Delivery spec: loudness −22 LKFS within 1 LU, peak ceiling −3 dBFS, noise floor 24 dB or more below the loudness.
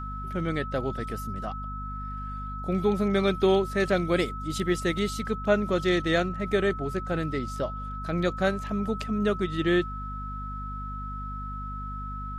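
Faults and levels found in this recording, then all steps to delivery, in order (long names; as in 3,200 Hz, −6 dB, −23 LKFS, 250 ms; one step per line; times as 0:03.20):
mains hum 50 Hz; hum harmonics up to 250 Hz; level of the hum −34 dBFS; interfering tone 1,300 Hz; level of the tone −36 dBFS; integrated loudness −28.5 LKFS; sample peak −10.5 dBFS; target loudness −22.0 LKFS
→ mains-hum notches 50/100/150/200/250 Hz
notch filter 1,300 Hz, Q 30
level +6.5 dB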